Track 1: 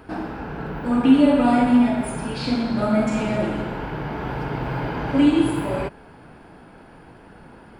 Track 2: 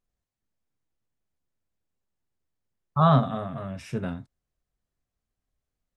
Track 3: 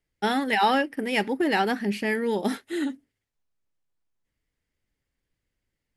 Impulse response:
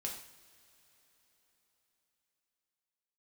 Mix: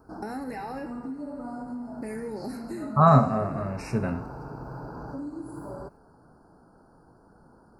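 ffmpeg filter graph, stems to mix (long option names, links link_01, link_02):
-filter_complex "[0:a]volume=-10.5dB[link_01];[1:a]volume=-0.5dB,asplit=2[link_02][link_03];[link_03]volume=-3.5dB[link_04];[2:a]alimiter=limit=-20.5dB:level=0:latency=1,acompressor=threshold=-32dB:ratio=3,volume=2.5dB,asplit=3[link_05][link_06][link_07];[link_05]atrim=end=0.9,asetpts=PTS-STARTPTS,afade=type=out:start_time=0.896:duration=0.004:curve=hsin[link_08];[link_06]atrim=start=0.9:end=2.02,asetpts=PTS-STARTPTS,volume=0[link_09];[link_07]atrim=start=2.02,asetpts=PTS-STARTPTS,afade=type=in:duration=0.004:curve=hsin[link_10];[link_08][link_09][link_10]concat=n=3:v=0:a=1,asplit=2[link_11][link_12];[link_12]volume=-11dB[link_13];[link_01][link_11]amix=inputs=2:normalize=0,asuperstop=centerf=2600:order=12:qfactor=0.88,acompressor=threshold=-34dB:ratio=6,volume=0dB[link_14];[3:a]atrim=start_sample=2205[link_15];[link_04][link_13]amix=inputs=2:normalize=0[link_16];[link_16][link_15]afir=irnorm=-1:irlink=0[link_17];[link_02][link_14][link_17]amix=inputs=3:normalize=0,asuperstop=centerf=3300:order=12:qfactor=2.8"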